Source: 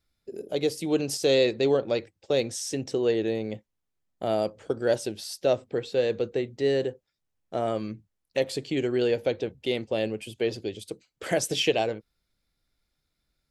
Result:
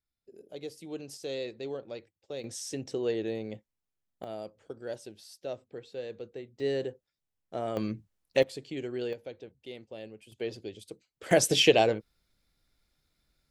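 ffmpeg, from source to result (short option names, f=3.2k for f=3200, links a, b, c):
-af "asetnsamples=n=441:p=0,asendcmd='2.44 volume volume -6dB;4.24 volume volume -14dB;6.6 volume volume -6dB;7.77 volume volume 1.5dB;8.43 volume volume -9.5dB;9.13 volume volume -16dB;10.32 volume volume -8dB;11.31 volume volume 3dB',volume=-14.5dB"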